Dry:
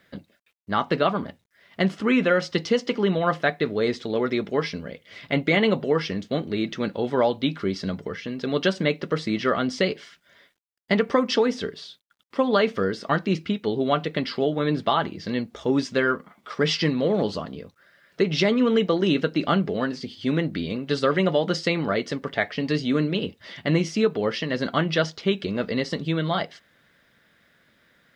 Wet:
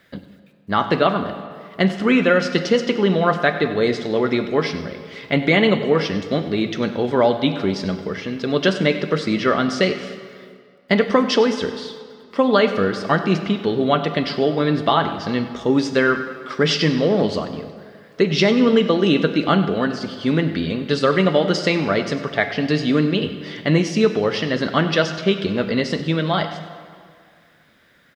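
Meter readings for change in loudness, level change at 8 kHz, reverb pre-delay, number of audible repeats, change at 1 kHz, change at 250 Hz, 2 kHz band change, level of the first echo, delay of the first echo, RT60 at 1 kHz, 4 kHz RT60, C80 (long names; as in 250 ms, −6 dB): +5.0 dB, +5.0 dB, 27 ms, 1, +5.0 dB, +5.0 dB, +5.0 dB, −16.0 dB, 97 ms, 2.1 s, 1.5 s, 10.0 dB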